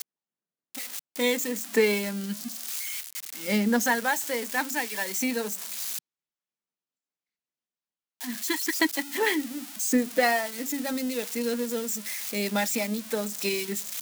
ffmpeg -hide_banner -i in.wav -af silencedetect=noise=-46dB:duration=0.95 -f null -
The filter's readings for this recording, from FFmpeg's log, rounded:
silence_start: 5.99
silence_end: 8.21 | silence_duration: 2.22